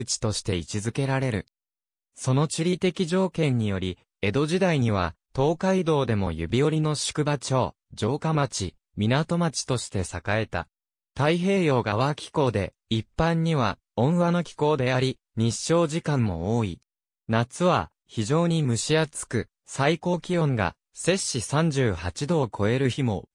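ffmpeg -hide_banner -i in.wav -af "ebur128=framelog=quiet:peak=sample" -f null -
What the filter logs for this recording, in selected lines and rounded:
Integrated loudness:
  I:         -25.3 LUFS
  Threshold: -35.5 LUFS
Loudness range:
  LRA:         2.1 LU
  Threshold: -45.5 LUFS
  LRA low:   -26.6 LUFS
  LRA high:  -24.5 LUFS
Sample peak:
  Peak:       -7.4 dBFS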